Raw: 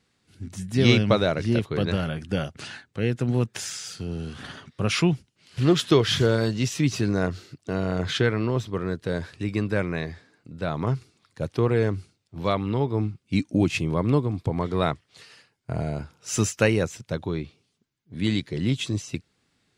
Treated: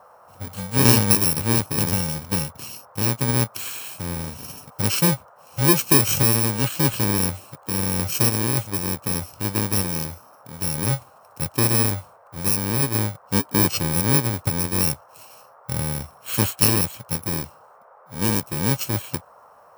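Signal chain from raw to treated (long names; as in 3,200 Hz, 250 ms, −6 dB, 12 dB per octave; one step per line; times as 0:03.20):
samples in bit-reversed order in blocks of 64 samples
noise in a band 490–1,300 Hz −53 dBFS
level +2.5 dB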